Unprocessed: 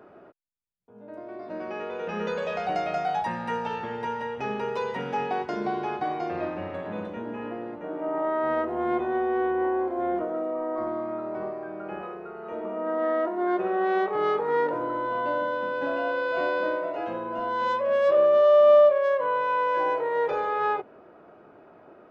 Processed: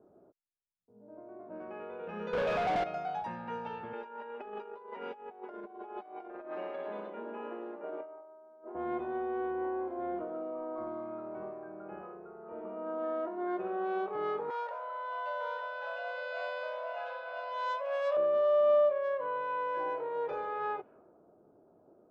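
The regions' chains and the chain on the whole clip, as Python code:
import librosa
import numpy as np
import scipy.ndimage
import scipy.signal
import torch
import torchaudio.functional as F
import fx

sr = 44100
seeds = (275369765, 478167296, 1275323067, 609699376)

y = fx.chain(x, sr, fx.zero_step(step_db=-34.5),
    fx.lowpass(hz=2800.0, slope=12),
    fx.leveller(passes=3), at=(2.33, 2.84))
y = fx.chain(y, sr, fx.highpass(hz=300.0, slope=24),
    fx.over_compress(threshold_db=-34.0, ratio=-0.5),
    fx.comb(ms=5.0, depth=0.54), at=(3.93, 8.75))
y = fx.chain(y, sr, fx.steep_highpass(hz=540.0, slope=48),
    fx.high_shelf(hz=3000.0, db=11.0),
    fx.echo_single(ms=904, db=-6.5), at=(14.5, 18.17))
y = fx.notch(y, sr, hz=1900.0, q=17.0)
y = fx.env_lowpass(y, sr, base_hz=520.0, full_db=-23.5)
y = fx.high_shelf(y, sr, hz=4400.0, db=-9.5)
y = F.gain(torch.from_numpy(y), -9.0).numpy()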